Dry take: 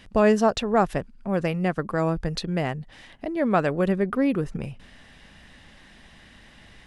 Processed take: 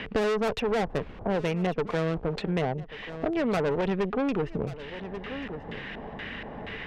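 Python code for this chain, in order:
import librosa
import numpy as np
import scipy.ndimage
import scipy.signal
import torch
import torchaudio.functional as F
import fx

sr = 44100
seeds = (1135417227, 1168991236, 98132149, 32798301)

p1 = fx.delta_mod(x, sr, bps=64000, step_db=-33.5, at=(1.88, 2.42))
p2 = fx.peak_eq(p1, sr, hz=440.0, db=11.5, octaves=0.2)
p3 = fx.dmg_noise_colour(p2, sr, seeds[0], colour='brown', level_db=-37.0, at=(0.64, 1.36), fade=0.02)
p4 = fx.filter_lfo_lowpass(p3, sr, shape='square', hz=2.1, low_hz=810.0, high_hz=2700.0, q=1.8)
p5 = fx.tube_stage(p4, sr, drive_db=23.0, bias=0.6)
p6 = p5 + fx.echo_single(p5, sr, ms=1136, db=-21.5, dry=0)
y = fx.band_squash(p6, sr, depth_pct=70)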